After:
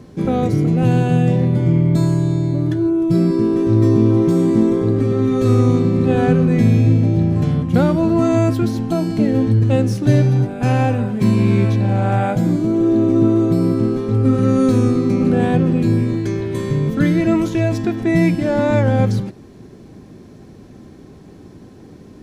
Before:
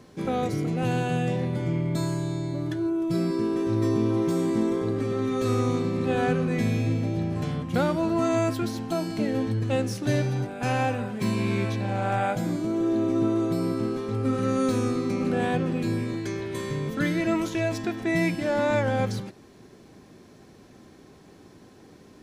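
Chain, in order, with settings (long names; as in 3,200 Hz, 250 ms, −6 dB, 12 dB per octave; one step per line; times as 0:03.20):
low-shelf EQ 420 Hz +11.5 dB
level +2.5 dB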